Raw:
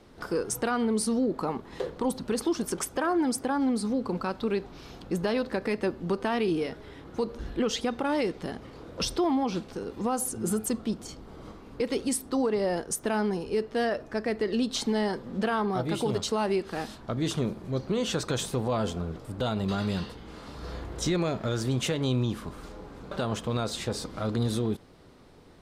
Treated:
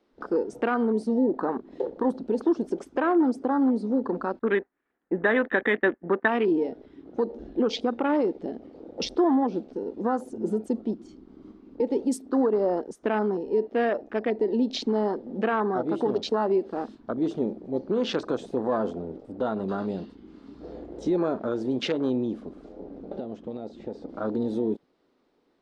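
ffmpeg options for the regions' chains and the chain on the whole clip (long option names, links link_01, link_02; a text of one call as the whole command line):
ffmpeg -i in.wav -filter_complex "[0:a]asettb=1/sr,asplit=3[link_01][link_02][link_03];[link_01]atrim=end=4.394[link_04];[link_02]atrim=start=4.39:end=6.28,asetpts=PTS-STARTPTS,afade=type=in:duration=0.004:curve=qsin,afade=type=out:start_time=1.886:duration=0.004:curve=qsin,lowpass=frequency=1800:width_type=q:width=5.6,agate=range=-33dB:threshold=-31dB:ratio=3:release=100:detection=peak[link_05];[link_03]atrim=start=6.276[link_06];[link_04][link_05]acrossfade=duration=0.004:curve1=hsin:curve2=qsin[link_07];[link_07][link_06]acrossfade=duration=0.004:curve1=qsin:curve2=hsin,asettb=1/sr,asplit=3[link_08][link_09][link_10];[link_08]atrim=end=22.804[link_11];[link_09]atrim=start=22.8:end=24.09,asetpts=PTS-STARTPTS,afade=type=in:duration=0.004:curve=qsin,afade=type=out:start_time=1.286:duration=0.004:curve=qsin,lowpass=6800,lowshelf=frequency=390:gain=6,acrossover=split=700|2500[link_12][link_13][link_14];[link_12]acompressor=threshold=-35dB:ratio=4[link_15];[link_13]acompressor=threshold=-44dB:ratio=4[link_16];[link_14]acompressor=threshold=-49dB:ratio=4[link_17];[link_15][link_16][link_17]amix=inputs=3:normalize=0[link_18];[link_10]atrim=start=24.086[link_19];[link_11][link_18]acrossfade=duration=0.004:curve1=hsin:curve2=qsin[link_20];[link_20][link_19]acrossfade=duration=0.004:curve1=qsin:curve2=hsin,afwtdn=0.0178,lowpass=5600,lowshelf=frequency=180:width_type=q:width=1.5:gain=-13,volume=2dB" out.wav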